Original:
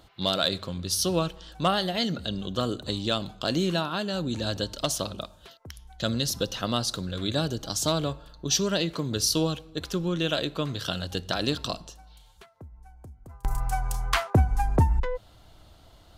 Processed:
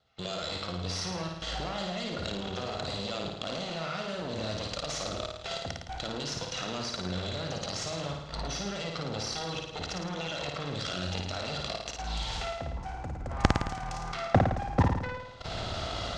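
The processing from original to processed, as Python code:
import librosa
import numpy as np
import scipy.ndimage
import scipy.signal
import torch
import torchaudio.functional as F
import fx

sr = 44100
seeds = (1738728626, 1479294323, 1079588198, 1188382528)

p1 = fx.lower_of_two(x, sr, delay_ms=1.5)
p2 = fx.recorder_agc(p1, sr, target_db=-17.0, rise_db_per_s=57.0, max_gain_db=30)
p3 = fx.highpass(p2, sr, hz=40.0, slope=6)
p4 = fx.leveller(p3, sr, passes=1)
p5 = scipy.signal.sosfilt(scipy.signal.butter(4, 6100.0, 'lowpass', fs=sr, output='sos'), p4)
p6 = fx.low_shelf(p5, sr, hz=70.0, db=-10.5)
p7 = fx.level_steps(p6, sr, step_db=18)
p8 = p7 + fx.room_flutter(p7, sr, wall_m=9.4, rt60_s=0.86, dry=0)
y = p8 * librosa.db_to_amplitude(-1.0)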